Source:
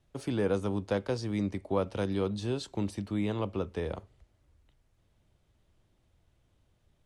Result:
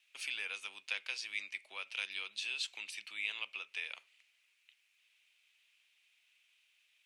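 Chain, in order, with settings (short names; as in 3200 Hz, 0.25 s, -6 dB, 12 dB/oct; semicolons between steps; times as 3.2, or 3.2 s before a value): compressor 1.5:1, threshold -39 dBFS, peak gain reduction 6 dB; resonant high-pass 2500 Hz, resonance Q 5.5; gain +3.5 dB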